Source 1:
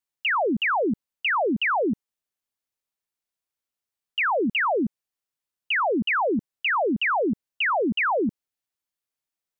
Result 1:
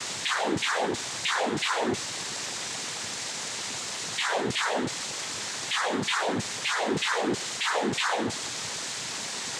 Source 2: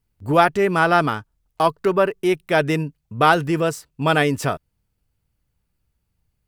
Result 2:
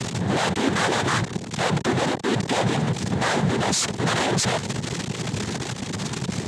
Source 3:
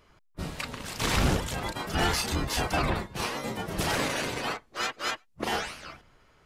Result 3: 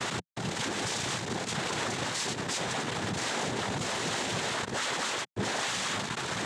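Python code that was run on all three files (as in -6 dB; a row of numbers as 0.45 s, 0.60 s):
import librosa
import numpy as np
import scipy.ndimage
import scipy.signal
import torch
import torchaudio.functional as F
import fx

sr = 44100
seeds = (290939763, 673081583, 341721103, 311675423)

y = np.sign(x) * np.sqrt(np.mean(np.square(x)))
y = fx.noise_vocoder(y, sr, seeds[0], bands=6)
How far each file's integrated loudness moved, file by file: -4.5 LU, -4.0 LU, -1.5 LU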